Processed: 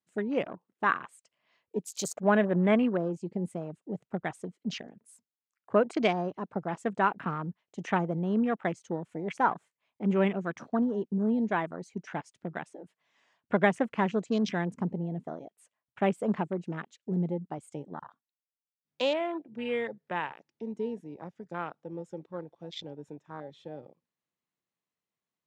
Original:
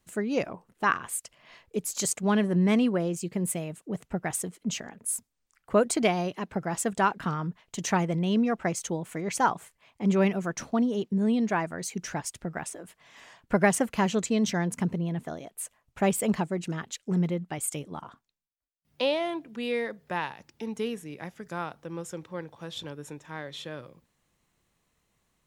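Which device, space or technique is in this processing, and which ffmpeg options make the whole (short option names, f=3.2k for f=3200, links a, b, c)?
over-cleaned archive recording: -filter_complex "[0:a]asplit=3[a][b][c];[a]afade=t=out:st=2.07:d=0.02[d];[b]equalizer=f=630:t=o:w=0.67:g=9,equalizer=f=1.6k:t=o:w=0.67:g=6,equalizer=f=10k:t=o:w=0.67:g=-7,afade=t=in:st=2.07:d=0.02,afade=t=out:st=2.75:d=0.02[e];[c]afade=t=in:st=2.75:d=0.02[f];[d][e][f]amix=inputs=3:normalize=0,highpass=160,lowpass=6.5k,afwtdn=0.0112,volume=-1.5dB"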